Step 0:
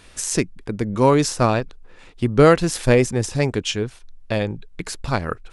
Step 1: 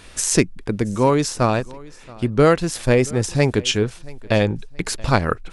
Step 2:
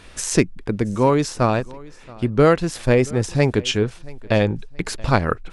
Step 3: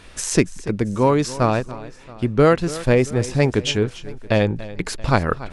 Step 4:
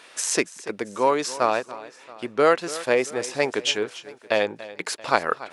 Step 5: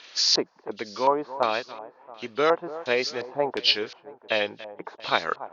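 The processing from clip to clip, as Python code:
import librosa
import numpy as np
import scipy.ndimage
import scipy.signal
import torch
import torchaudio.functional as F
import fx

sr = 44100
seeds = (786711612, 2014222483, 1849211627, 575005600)

y1 = fx.rider(x, sr, range_db=4, speed_s=0.5)
y1 = fx.echo_feedback(y1, sr, ms=677, feedback_pct=30, wet_db=-22.5)
y1 = y1 * librosa.db_to_amplitude(1.0)
y2 = fx.high_shelf(y1, sr, hz=5200.0, db=-7.0)
y3 = y2 + 10.0 ** (-17.0 / 20.0) * np.pad(y2, (int(286 * sr / 1000.0), 0))[:len(y2)]
y4 = scipy.signal.sosfilt(scipy.signal.butter(2, 500.0, 'highpass', fs=sr, output='sos'), y3)
y5 = fx.freq_compress(y4, sr, knee_hz=2700.0, ratio=1.5)
y5 = fx.high_shelf(y5, sr, hz=3900.0, db=11.0)
y5 = fx.filter_lfo_lowpass(y5, sr, shape='square', hz=1.4, low_hz=880.0, high_hz=4400.0, q=2.5)
y5 = y5 * librosa.db_to_amplitude(-5.0)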